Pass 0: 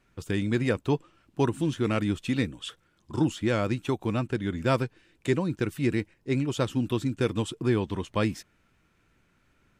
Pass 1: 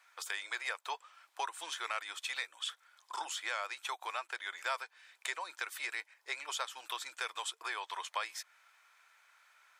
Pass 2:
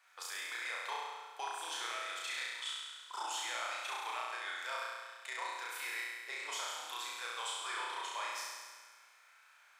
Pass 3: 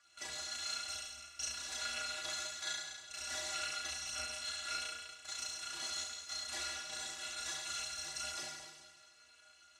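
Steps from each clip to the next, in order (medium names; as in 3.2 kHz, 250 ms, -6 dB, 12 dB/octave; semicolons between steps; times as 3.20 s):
inverse Chebyshev high-pass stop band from 240 Hz, stop band 60 dB; band-stop 2.8 kHz, Q 10; compression 2.5:1, threshold -45 dBFS, peak gain reduction 13.5 dB; trim +6.5 dB
peaking EQ 110 Hz -3.5 dB 0.31 oct; peak limiter -28 dBFS, peak gain reduction 9 dB; flutter echo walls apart 5.8 m, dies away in 1.5 s; trim -4 dB
bit-reversed sample order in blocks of 256 samples; low-pass 7.8 kHz 24 dB/octave; inharmonic resonator 71 Hz, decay 0.32 s, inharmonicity 0.03; trim +12.5 dB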